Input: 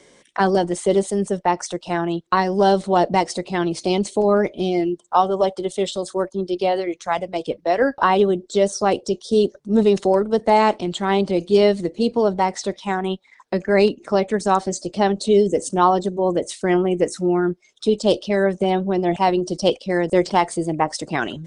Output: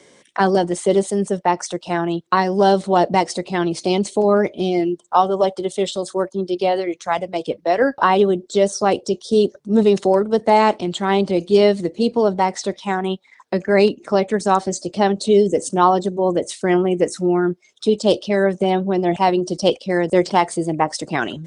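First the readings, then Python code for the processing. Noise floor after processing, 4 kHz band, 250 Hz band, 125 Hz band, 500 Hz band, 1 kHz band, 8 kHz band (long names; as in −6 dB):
−54 dBFS, +1.5 dB, +1.5 dB, +1.5 dB, +1.5 dB, +1.5 dB, +1.5 dB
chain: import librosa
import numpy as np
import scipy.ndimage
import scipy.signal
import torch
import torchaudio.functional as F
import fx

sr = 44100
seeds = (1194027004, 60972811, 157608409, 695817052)

y = scipy.signal.sosfilt(scipy.signal.butter(2, 73.0, 'highpass', fs=sr, output='sos'), x)
y = F.gain(torch.from_numpy(y), 1.5).numpy()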